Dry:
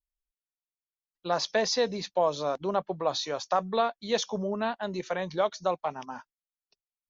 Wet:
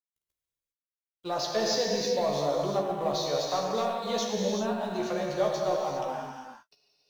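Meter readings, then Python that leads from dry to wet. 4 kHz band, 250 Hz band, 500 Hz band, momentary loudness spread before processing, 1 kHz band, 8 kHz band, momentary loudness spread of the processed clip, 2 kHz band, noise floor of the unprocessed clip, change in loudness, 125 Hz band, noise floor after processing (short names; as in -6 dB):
+0.5 dB, +2.0 dB, +1.0 dB, 8 LU, -1.0 dB, n/a, 8 LU, -3.0 dB, under -85 dBFS, +0.5 dB, +2.5 dB, under -85 dBFS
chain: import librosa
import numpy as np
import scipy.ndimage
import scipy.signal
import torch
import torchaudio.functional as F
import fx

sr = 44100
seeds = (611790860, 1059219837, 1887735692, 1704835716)

p1 = fx.law_mismatch(x, sr, coded='mu')
p2 = fx.dynamic_eq(p1, sr, hz=1800.0, q=0.83, threshold_db=-40.0, ratio=4.0, max_db=-6)
p3 = np.clip(10.0 ** (23.0 / 20.0) * p2, -1.0, 1.0) / 10.0 ** (23.0 / 20.0)
p4 = p2 + F.gain(torch.from_numpy(p3), -5.5).numpy()
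p5 = fx.doubler(p4, sr, ms=14.0, db=-5.5)
p6 = fx.rev_gated(p5, sr, seeds[0], gate_ms=430, shape='flat', drr_db=-1.5)
y = F.gain(torch.from_numpy(p6), -7.5).numpy()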